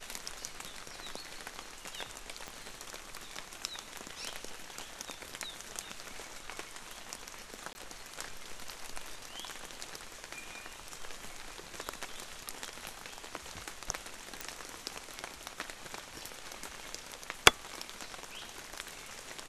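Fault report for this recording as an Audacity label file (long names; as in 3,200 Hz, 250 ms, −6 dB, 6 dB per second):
2.480000	2.480000	click −26 dBFS
7.730000	7.750000	drop-out 20 ms
14.410000	14.410000	click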